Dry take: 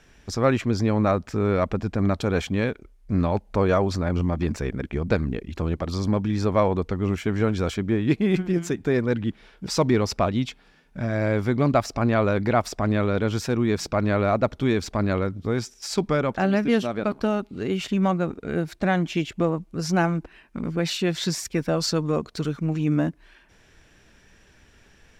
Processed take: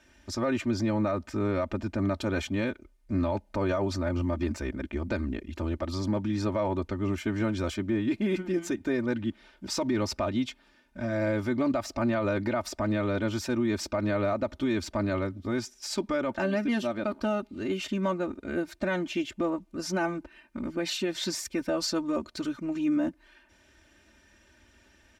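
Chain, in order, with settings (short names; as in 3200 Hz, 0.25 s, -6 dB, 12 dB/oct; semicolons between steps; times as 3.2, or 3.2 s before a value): HPF 53 Hz; comb 3.3 ms, depth 87%; limiter -13.5 dBFS, peak gain reduction 8 dB; gain -6 dB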